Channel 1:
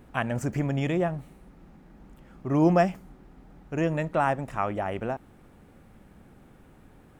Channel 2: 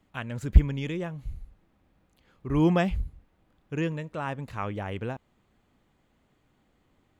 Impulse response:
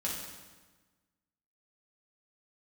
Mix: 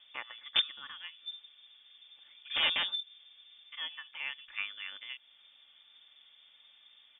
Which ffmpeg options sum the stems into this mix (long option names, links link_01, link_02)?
-filter_complex "[0:a]aemphasis=mode=production:type=75fm,acompressor=threshold=-35dB:ratio=5,lowpass=6400,volume=-4.5dB,asplit=2[link_01][link_02];[1:a]aeval=exprs='(mod(6.31*val(0)+1,2)-1)/6.31':channel_layout=same,volume=-1,volume=-6.5dB[link_03];[link_02]apad=whole_len=317468[link_04];[link_03][link_04]sidechaingate=range=-33dB:threshold=-54dB:ratio=16:detection=peak[link_05];[link_01][link_05]amix=inputs=2:normalize=0,aecho=1:1:3.3:0.42,aeval=exprs='0.126*(cos(1*acos(clip(val(0)/0.126,-1,1)))-cos(1*PI/2))+0.00355*(cos(5*acos(clip(val(0)/0.126,-1,1)))-cos(5*PI/2))+0.00794*(cos(7*acos(clip(val(0)/0.126,-1,1)))-cos(7*PI/2))':channel_layout=same,lowpass=frequency=3100:width_type=q:width=0.5098,lowpass=frequency=3100:width_type=q:width=0.6013,lowpass=frequency=3100:width_type=q:width=0.9,lowpass=frequency=3100:width_type=q:width=2.563,afreqshift=-3600"